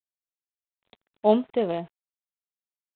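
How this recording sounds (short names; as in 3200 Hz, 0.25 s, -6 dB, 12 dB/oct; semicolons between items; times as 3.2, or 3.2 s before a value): random-step tremolo 3.5 Hz; a quantiser's noise floor 10-bit, dither none; G.726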